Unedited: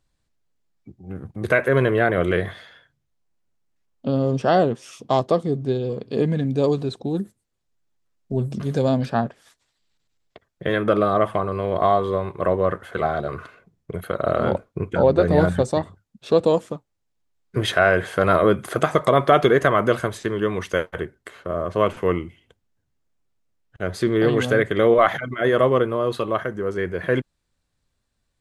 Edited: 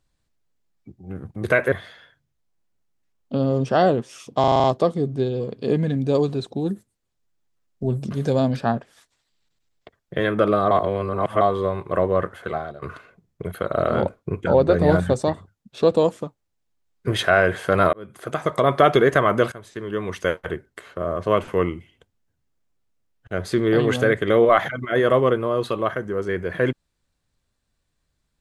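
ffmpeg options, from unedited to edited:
-filter_complex "[0:a]asplit=13[a][b][c][d][e][f][g][h][i][j][k][l][m];[a]atrim=end=1.722[n];[b]atrim=start=2.448:end=5.172[o];[c]atrim=start=5.128:end=5.172[p];[d]atrim=start=5.128:end=5.172[q];[e]atrim=start=5.128:end=5.172[r];[f]atrim=start=5.128:end=5.172[s];[g]atrim=start=5.128:end=5.172[t];[h]atrim=start=5.128:end=11.202[u];[i]atrim=start=11.198:end=11.902,asetpts=PTS-STARTPTS,areverse[v];[j]atrim=start=11.898:end=13.31,asetpts=PTS-STARTPTS,afade=t=out:st=0.902:d=0.51:silence=0.125893[w];[k]atrim=start=13.31:end=18.42,asetpts=PTS-STARTPTS,afade=t=in:d=0.004:c=hsin:silence=0.125893,afade=t=out:st=5.106:d=0.004:c=hsin[x];[l]atrim=start=18.42:end=20.01,asetpts=PTS-STARTPTS,afade=t=in:d=0.86,afade=t=out:st=1.586:d=0.004:c=hsin:silence=0.11885[y];[m]atrim=start=20.01,asetpts=PTS-STARTPTS,afade=t=in:d=0.77:silence=0.11885[z];[n][o]acrossfade=d=0.004:c1=hsin:c2=hsin[aa];[aa][p]acrossfade=d=0.004:c1=hsin:c2=hsin[ab];[ab][q]acrossfade=d=0.004:c1=hsin:c2=hsin[ac];[ac][r]acrossfade=d=0.004:c1=hsin:c2=hsin[ad];[ad][s]acrossfade=d=0.004:c1=hsin:c2=hsin[ae];[ae][t]acrossfade=d=0.004:c1=hsin:c2=hsin[af];[af][u]acrossfade=d=0.004:c1=hsin:c2=hsin[ag];[ag][v]acrossfade=d=0.004:c1=hsin:c2=hsin[ah];[w][x][y][z]concat=n=4:v=0:a=1[ai];[ah][ai]acrossfade=d=0.004:c1=hsin:c2=hsin"

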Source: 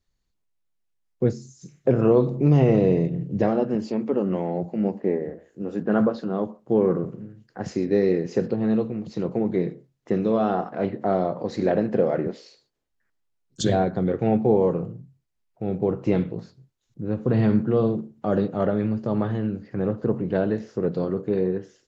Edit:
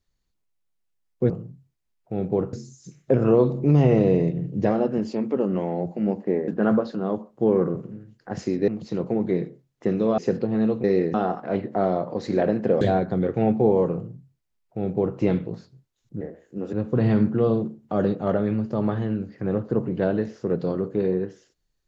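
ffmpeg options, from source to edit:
-filter_complex "[0:a]asplit=11[a][b][c][d][e][f][g][h][i][j][k];[a]atrim=end=1.302[l];[b]atrim=start=14.798:end=16.032[m];[c]atrim=start=1.298:end=5.252[n];[d]atrim=start=5.768:end=7.972[o];[e]atrim=start=8.928:end=10.432[p];[f]atrim=start=8.268:end=8.932[q];[g]atrim=start=7.968:end=8.272[r];[h]atrim=start=10.428:end=12.102[s];[i]atrim=start=13.658:end=17.062[t];[j]atrim=start=5.248:end=5.772[u];[k]atrim=start=17.058[v];[l][m]acrossfade=d=0.004:c1=hsin:c2=hsin[w];[w][n]acrossfade=d=0.004:c1=hsin:c2=hsin[x];[x][o]acrossfade=d=0.004:c1=hsin:c2=hsin[y];[y][p]acrossfade=d=0.004:c1=hsin:c2=hsin[z];[z][q]acrossfade=d=0.004:c1=hsin:c2=hsin[aa];[aa][r]acrossfade=d=0.004:c1=hsin:c2=hsin[ab];[ab][s]acrossfade=d=0.004:c1=hsin:c2=hsin[ac];[ac][t]acrossfade=d=0.004:c1=hsin:c2=hsin[ad];[ad][u]acrossfade=d=0.004:c1=hsin:c2=hsin[ae];[ae][v]acrossfade=d=0.004:c1=hsin:c2=hsin"

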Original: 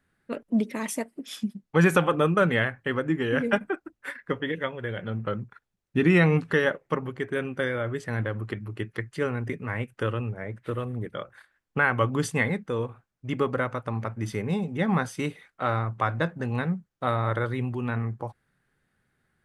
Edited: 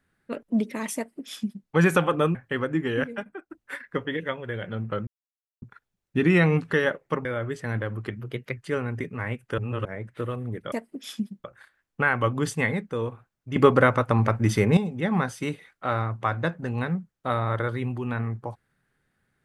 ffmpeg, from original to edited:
-filter_complex "[0:a]asplit=14[a][b][c][d][e][f][g][h][i][j][k][l][m][n];[a]atrim=end=2.352[o];[b]atrim=start=2.698:end=3.39,asetpts=PTS-STARTPTS,afade=t=out:st=0.562:d=0.13:c=log:silence=0.316228[p];[c]atrim=start=3.39:end=3.85,asetpts=PTS-STARTPTS,volume=-10dB[q];[d]atrim=start=3.85:end=5.42,asetpts=PTS-STARTPTS,afade=t=in:d=0.13:c=log:silence=0.316228,afade=t=out:st=1.566:d=0.004:c=hsin,apad=pad_dur=0.55[r];[e]atrim=start=5.42:end=7.052,asetpts=PTS-STARTPTS,afade=t=in:d=0.004:c=hsin[s];[f]atrim=start=7.688:end=8.634[t];[g]atrim=start=8.63:end=9.06,asetpts=PTS-STARTPTS,asetrate=49833,aresample=44100,atrim=end_sample=16781,asetpts=PTS-STARTPTS[u];[h]atrim=start=9.056:end=10.072[v];[i]atrim=start=10.068:end=10.342,asetpts=PTS-STARTPTS,areverse[w];[j]atrim=start=10.338:end=11.212[x];[k]atrim=start=0.958:end=1.682[y];[l]atrim=start=11.208:end=13.332[z];[m]atrim=start=13.328:end=14.542,asetpts=PTS-STARTPTS,volume=9dB[aa];[n]atrim=start=14.538[ab];[p][q][r][s]concat=n=4:v=0:a=1[ac];[o][ac]acrossfade=d=0.004:c1=hsin:c2=hsin[ad];[ad][t]acrossfade=d=0.004:c1=hsin:c2=hsin[ae];[ae][u]acrossfade=d=0.004:c1=hsin:c2=hsin[af];[af][v]acrossfade=d=0.004:c1=hsin:c2=hsin[ag];[ag][w]acrossfade=d=0.004:c1=hsin:c2=hsin[ah];[ah][x]acrossfade=d=0.004:c1=hsin:c2=hsin[ai];[ai][y]acrossfade=d=0.004:c1=hsin:c2=hsin[aj];[aj][z]acrossfade=d=0.004:c1=hsin:c2=hsin[ak];[ak][aa]acrossfade=d=0.004:c1=hsin:c2=hsin[al];[al][ab]acrossfade=d=0.004:c1=hsin:c2=hsin"

